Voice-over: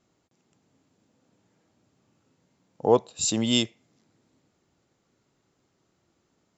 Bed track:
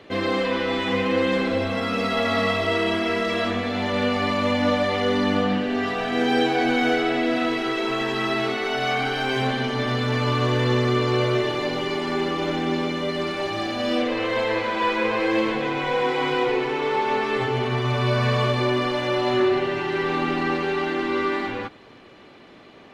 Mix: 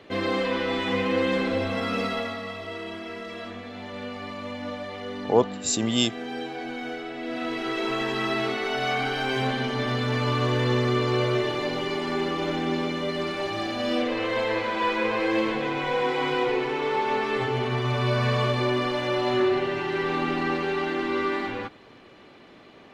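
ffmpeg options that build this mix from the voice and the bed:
-filter_complex "[0:a]adelay=2450,volume=0dB[a];[1:a]volume=8dB,afade=t=out:st=1.99:d=0.39:silence=0.298538,afade=t=in:st=7.16:d=0.68:silence=0.298538[b];[a][b]amix=inputs=2:normalize=0"

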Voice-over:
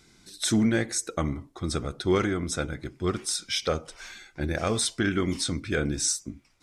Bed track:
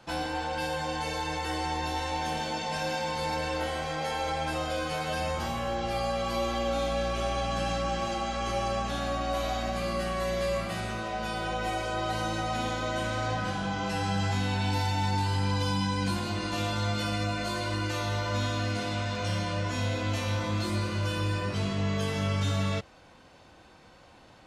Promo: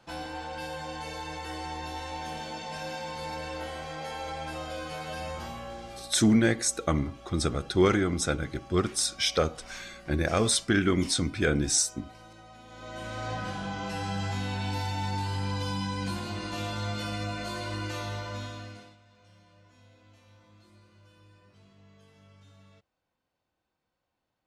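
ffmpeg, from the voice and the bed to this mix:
-filter_complex "[0:a]adelay=5700,volume=1.5dB[a];[1:a]volume=11dB,afade=t=out:st=5.37:d=0.79:silence=0.188365,afade=t=in:st=12.67:d=0.66:silence=0.149624,afade=t=out:st=17.96:d=1.01:silence=0.0562341[b];[a][b]amix=inputs=2:normalize=0"

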